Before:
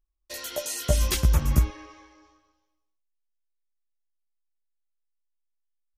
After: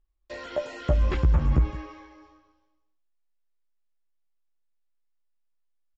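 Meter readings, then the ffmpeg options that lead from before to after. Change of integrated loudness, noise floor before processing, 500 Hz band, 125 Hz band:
0.0 dB, -77 dBFS, +1.5 dB, +0.5 dB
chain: -filter_complex "[0:a]asplit=2[a][b];[b]aecho=0:1:166:0.0891[c];[a][c]amix=inputs=2:normalize=0,acrossover=split=2500[d][e];[e]acompressor=threshold=-47dB:ratio=4:attack=1:release=60[f];[d][f]amix=inputs=2:normalize=0,highshelf=f=3.1k:g=-10.5,asplit=2[g][h];[h]acompressor=threshold=-26dB:ratio=6,volume=-2dB[i];[g][i]amix=inputs=2:normalize=0,bandreject=f=6.2k:w=6.5,aresample=16000,aresample=44100,asoftclip=type=tanh:threshold=-12.5dB"

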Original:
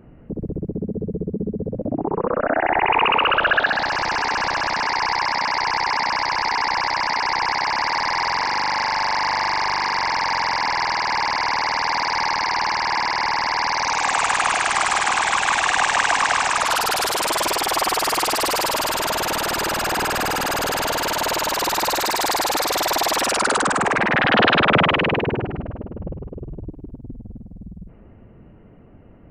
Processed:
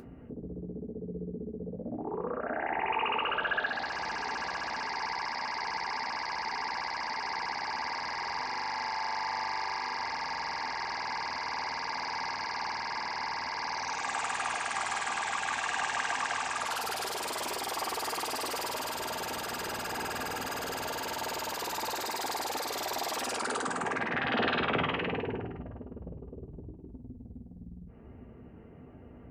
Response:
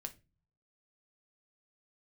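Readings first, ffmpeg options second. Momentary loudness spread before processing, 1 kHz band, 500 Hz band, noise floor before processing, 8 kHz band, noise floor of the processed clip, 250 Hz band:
11 LU, -13.5 dB, -13.0 dB, -45 dBFS, -14.0 dB, -49 dBFS, -12.5 dB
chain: -filter_complex "[0:a]highpass=60,acompressor=mode=upward:threshold=-26dB:ratio=2.5[a];[1:a]atrim=start_sample=2205,asetrate=74970,aresample=44100[b];[a][b]afir=irnorm=-1:irlink=0,volume=-5.5dB"

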